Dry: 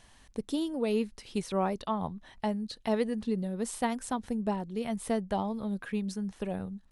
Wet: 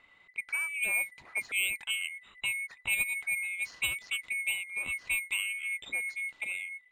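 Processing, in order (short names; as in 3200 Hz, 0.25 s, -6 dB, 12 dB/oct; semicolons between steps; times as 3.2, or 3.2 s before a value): band-swap scrambler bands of 2000 Hz; careless resampling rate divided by 4×, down filtered, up hold; low-pass opened by the level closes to 2700 Hz, open at -24.5 dBFS; gain -1.5 dB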